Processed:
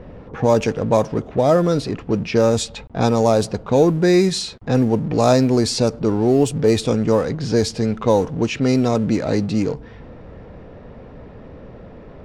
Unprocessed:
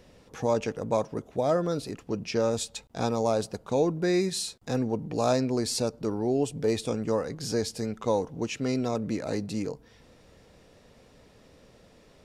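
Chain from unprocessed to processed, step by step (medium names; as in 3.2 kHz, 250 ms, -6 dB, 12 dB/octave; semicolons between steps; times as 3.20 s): companding laws mixed up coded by mu; bass shelf 230 Hz +4.5 dB; level-controlled noise filter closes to 1.3 kHz, open at -19.5 dBFS; trim +8.5 dB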